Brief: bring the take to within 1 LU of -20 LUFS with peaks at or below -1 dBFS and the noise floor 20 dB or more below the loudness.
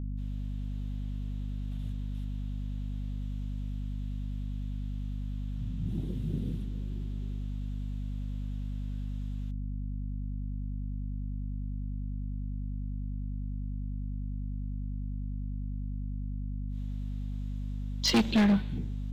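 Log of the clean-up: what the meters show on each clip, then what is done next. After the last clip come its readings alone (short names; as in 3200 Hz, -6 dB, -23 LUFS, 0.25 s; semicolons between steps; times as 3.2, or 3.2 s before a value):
clipped 0.4%; flat tops at -19.5 dBFS; hum 50 Hz; harmonics up to 250 Hz; hum level -32 dBFS; loudness -35.5 LUFS; peak -19.5 dBFS; loudness target -20.0 LUFS
-> clip repair -19.5 dBFS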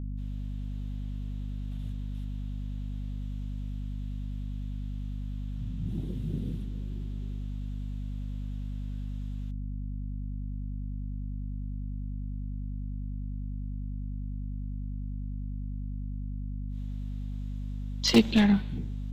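clipped 0.0%; hum 50 Hz; harmonics up to 250 Hz; hum level -32 dBFS
-> notches 50/100/150/200/250 Hz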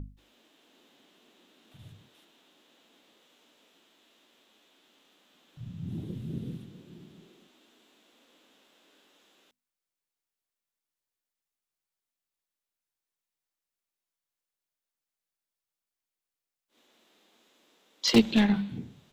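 hum none; loudness -28.5 LUFS; peak -10.0 dBFS; loudness target -20.0 LUFS
-> gain +8.5 dB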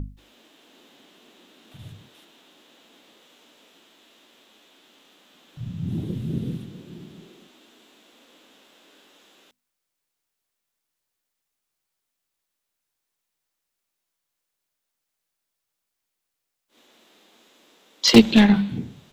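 loudness -20.0 LUFS; peak -1.5 dBFS; noise floor -82 dBFS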